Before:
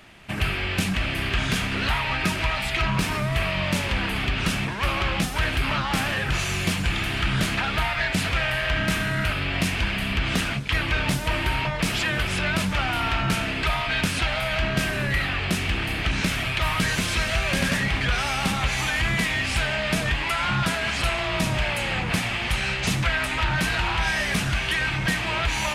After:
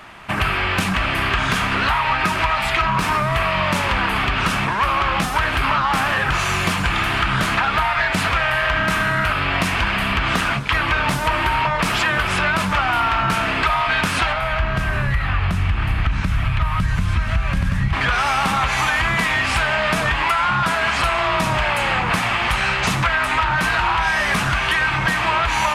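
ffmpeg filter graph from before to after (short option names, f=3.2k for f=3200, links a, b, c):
-filter_complex "[0:a]asettb=1/sr,asplit=3[a][b][c];[a]atrim=end=14.324[d];[b]atrim=start=14.32:end=17.93,asetpts=PTS-STARTPTS,afade=t=in:d=0.004:c=qsin,afade=t=out:st=3.606:d=0.004:c=qsin,asubboost=boost=11:cutoff=150,acrossover=split=130|2900[e][f][g];[e]acompressor=threshold=-17dB:ratio=4[h];[f]acompressor=threshold=-30dB:ratio=4[i];[g]acompressor=threshold=-46dB:ratio=4[j];[h][i][j]amix=inputs=3:normalize=0[k];[c]atrim=start=17.926[l];[d][k]acrossfade=d=0.004:c1=hsin:c2=qsin[m];[m][l]acrossfade=d=0.004:c1=qsin:c2=hsin,equalizer=f=1.1k:t=o:w=1.3:g=12,acompressor=threshold=-19dB:ratio=6,volume=4dB"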